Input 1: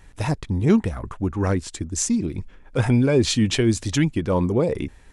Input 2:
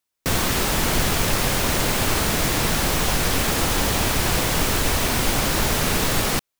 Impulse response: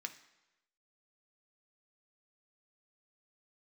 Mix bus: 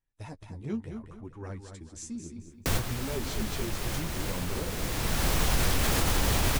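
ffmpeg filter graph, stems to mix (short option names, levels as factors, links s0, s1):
-filter_complex "[0:a]agate=range=0.112:threshold=0.01:ratio=16:detection=peak,flanger=delay=7:depth=7.6:regen=16:speed=0.74:shape=triangular,volume=0.178,asplit=3[s0][s1][s2];[s1]volume=0.422[s3];[1:a]acrossover=split=120[s4][s5];[s5]acompressor=threshold=0.0282:ratio=2[s6];[s4][s6]amix=inputs=2:normalize=0,adelay=2400,volume=1.19[s7];[s2]apad=whole_len=396847[s8];[s7][s8]sidechaincompress=threshold=0.00631:ratio=10:attack=48:release=1050[s9];[s3]aecho=0:1:219|438|657|876|1095:1|0.33|0.109|0.0359|0.0119[s10];[s0][s9][s10]amix=inputs=3:normalize=0,alimiter=limit=0.168:level=0:latency=1:release=49"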